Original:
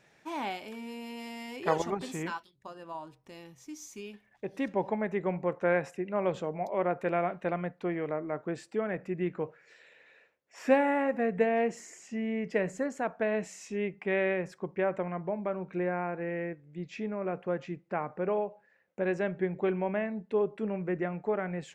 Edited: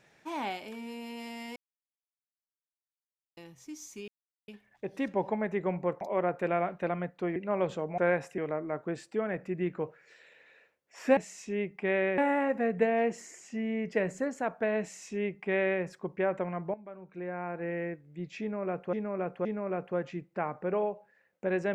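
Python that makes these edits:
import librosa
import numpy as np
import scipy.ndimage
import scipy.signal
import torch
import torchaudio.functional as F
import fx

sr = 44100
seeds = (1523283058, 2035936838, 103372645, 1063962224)

y = fx.edit(x, sr, fx.silence(start_s=1.56, length_s=1.81),
    fx.insert_silence(at_s=4.08, length_s=0.4),
    fx.swap(start_s=5.61, length_s=0.4, other_s=6.63, other_length_s=1.35),
    fx.duplicate(start_s=13.4, length_s=1.01, to_s=10.77),
    fx.fade_in_from(start_s=15.33, length_s=0.92, curve='qua', floor_db=-14.0),
    fx.repeat(start_s=17.0, length_s=0.52, count=3), tone=tone)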